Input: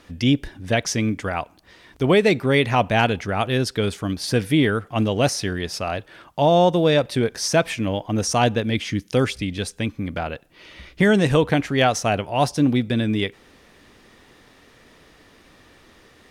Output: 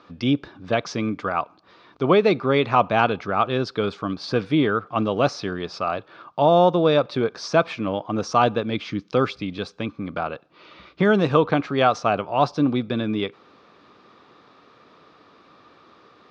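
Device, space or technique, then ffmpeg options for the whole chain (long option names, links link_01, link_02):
kitchen radio: -af "highpass=160,equalizer=frequency=240:width_type=q:width=4:gain=-3,equalizer=frequency=1200:width_type=q:width=4:gain=10,equalizer=frequency=1900:width_type=q:width=4:gain=-10,equalizer=frequency=3000:width_type=q:width=4:gain=-6,lowpass=frequency=4400:width=0.5412,lowpass=frequency=4400:width=1.3066"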